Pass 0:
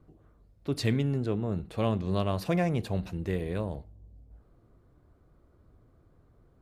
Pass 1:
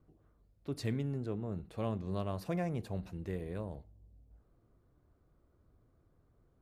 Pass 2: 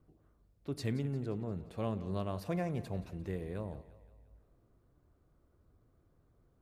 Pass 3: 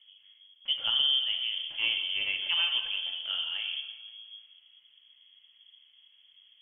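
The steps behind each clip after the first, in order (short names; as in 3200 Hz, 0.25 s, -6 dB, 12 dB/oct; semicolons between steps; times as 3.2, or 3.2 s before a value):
dynamic EQ 3200 Hz, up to -5 dB, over -53 dBFS, Q 1.1; gain -8 dB
split-band echo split 440 Hz, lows 93 ms, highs 0.175 s, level -16 dB
two-slope reverb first 0.83 s, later 3.3 s, from -24 dB, DRR 2.5 dB; inverted band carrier 3300 Hz; gain +5 dB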